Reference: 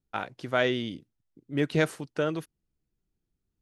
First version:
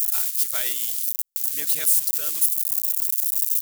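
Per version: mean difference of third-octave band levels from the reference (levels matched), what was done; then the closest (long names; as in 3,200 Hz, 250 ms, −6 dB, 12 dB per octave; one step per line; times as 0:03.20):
20.5 dB: spike at every zero crossing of −22.5 dBFS
first-order pre-emphasis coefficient 0.97
brickwall limiter −20 dBFS, peak gain reduction 4.5 dB
high-shelf EQ 4,200 Hz +5.5 dB
level +6 dB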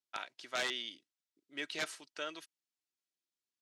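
9.0 dB: first difference
comb filter 3.1 ms, depth 32%
wrap-around overflow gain 29.5 dB
band-pass filter 170–5,100 Hz
level +6 dB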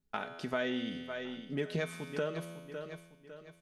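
6.5 dB: tuned comb filter 84 Hz, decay 1 s, harmonics all, mix 70%
repeating echo 554 ms, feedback 39%, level −16.5 dB
downward compressor 3 to 1, threshold −44 dBFS, peak gain reduction 12.5 dB
comb filter 4.7 ms, depth 53%
level +9 dB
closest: third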